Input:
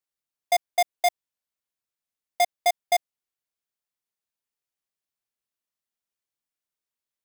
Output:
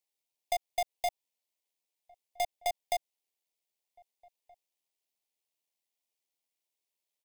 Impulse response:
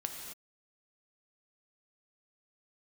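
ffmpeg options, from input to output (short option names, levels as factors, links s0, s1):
-filter_complex "[0:a]bass=f=250:g=-13,treble=f=4000:g=-1,alimiter=level_in=1.26:limit=0.0631:level=0:latency=1,volume=0.794,acrossover=split=450|1200[s0][s1][s2];[s0]acompressor=threshold=0.00224:ratio=4[s3];[s1]acompressor=threshold=0.0224:ratio=4[s4];[s2]acompressor=threshold=0.0126:ratio=4[s5];[s3][s4][s5]amix=inputs=3:normalize=0,tremolo=f=84:d=0.333,asplit=2[s6][s7];[s7]acrusher=bits=5:dc=4:mix=0:aa=0.000001,volume=0.316[s8];[s6][s8]amix=inputs=2:normalize=0,asuperstop=centerf=1400:order=4:qfactor=1.3,asplit=2[s9][s10];[s10]adelay=1574,volume=0.0501,highshelf=f=4000:g=-35.4[s11];[s9][s11]amix=inputs=2:normalize=0,volume=1.68"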